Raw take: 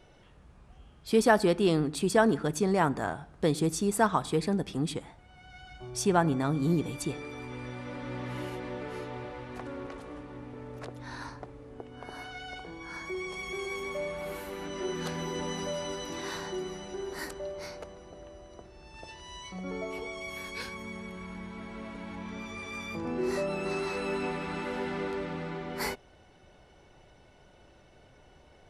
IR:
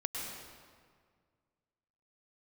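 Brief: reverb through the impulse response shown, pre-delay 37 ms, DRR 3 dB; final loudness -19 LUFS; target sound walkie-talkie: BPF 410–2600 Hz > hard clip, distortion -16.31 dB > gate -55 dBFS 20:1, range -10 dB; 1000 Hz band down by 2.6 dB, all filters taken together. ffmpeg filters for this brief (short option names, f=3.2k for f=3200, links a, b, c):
-filter_complex "[0:a]equalizer=f=1k:t=o:g=-3,asplit=2[a][b];[1:a]atrim=start_sample=2205,adelay=37[c];[b][c]afir=irnorm=-1:irlink=0,volume=-6dB[d];[a][d]amix=inputs=2:normalize=0,highpass=410,lowpass=2.6k,asoftclip=type=hard:threshold=-19dB,agate=range=-10dB:threshold=-55dB:ratio=20,volume=16.5dB"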